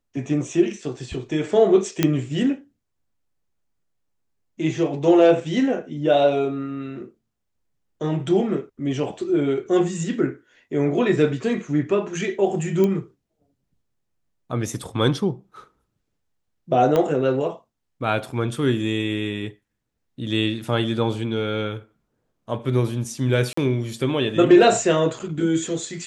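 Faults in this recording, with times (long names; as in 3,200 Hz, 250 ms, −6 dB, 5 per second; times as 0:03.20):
0:02.03: click −4 dBFS
0:12.84: click −11 dBFS
0:16.96: click −9 dBFS
0:23.53–0:23.57: drop-out 44 ms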